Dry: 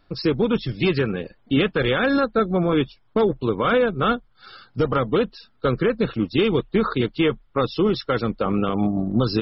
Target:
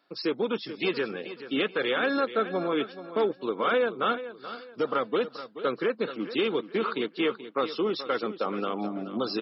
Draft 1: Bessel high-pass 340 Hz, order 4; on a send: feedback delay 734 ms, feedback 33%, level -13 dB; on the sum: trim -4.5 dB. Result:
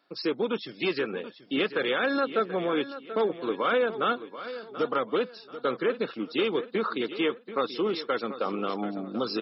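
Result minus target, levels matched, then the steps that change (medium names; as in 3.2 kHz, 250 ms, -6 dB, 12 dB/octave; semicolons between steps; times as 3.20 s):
echo 304 ms late
change: feedback delay 430 ms, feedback 33%, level -13 dB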